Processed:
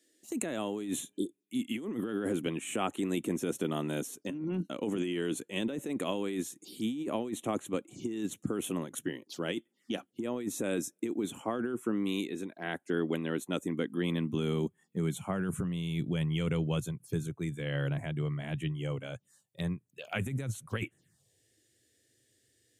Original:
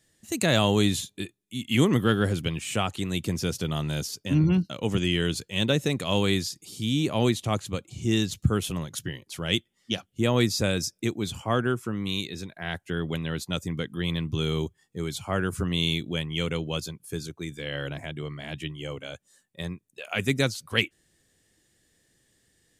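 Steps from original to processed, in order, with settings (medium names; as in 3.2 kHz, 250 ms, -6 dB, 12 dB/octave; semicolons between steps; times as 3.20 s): high-pass sweep 280 Hz -> 120 Hz, 13.69–16.36 s; compressor with a negative ratio -26 dBFS, ratio -1; touch-sensitive phaser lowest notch 150 Hz, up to 4.8 kHz, full sweep at -30 dBFS; spectral replace 1.16–1.40 s, 620–3100 Hz both; trim -5.5 dB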